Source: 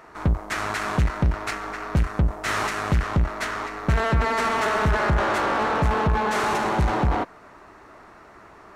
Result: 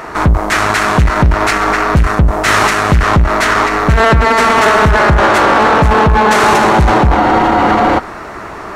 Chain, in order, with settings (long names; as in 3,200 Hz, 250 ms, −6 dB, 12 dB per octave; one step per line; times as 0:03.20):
frozen spectrum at 0:07.17, 0.81 s
boost into a limiter +22 dB
level −1 dB